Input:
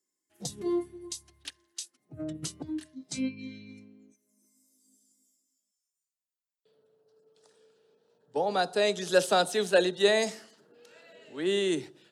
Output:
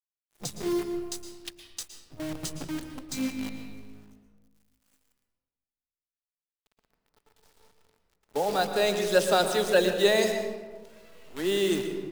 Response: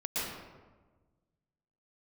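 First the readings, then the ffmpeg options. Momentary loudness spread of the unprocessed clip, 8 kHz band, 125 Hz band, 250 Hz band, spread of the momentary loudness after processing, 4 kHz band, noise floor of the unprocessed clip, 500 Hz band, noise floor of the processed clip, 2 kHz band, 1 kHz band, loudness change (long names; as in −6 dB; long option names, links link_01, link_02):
19 LU, +2.0 dB, +3.0 dB, +2.0 dB, 19 LU, +1.5 dB, below −85 dBFS, +2.0 dB, below −85 dBFS, +1.5 dB, +1.5 dB, +2.0 dB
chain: -filter_complex "[0:a]highpass=frequency=49:width=0.5412,highpass=frequency=49:width=1.3066,acrusher=bits=7:dc=4:mix=0:aa=0.000001,asplit=2[link_01][link_02];[1:a]atrim=start_sample=2205,lowshelf=frequency=87:gain=11.5[link_03];[link_02][link_03]afir=irnorm=-1:irlink=0,volume=-10.5dB[link_04];[link_01][link_04]amix=inputs=2:normalize=0,volume=-1dB"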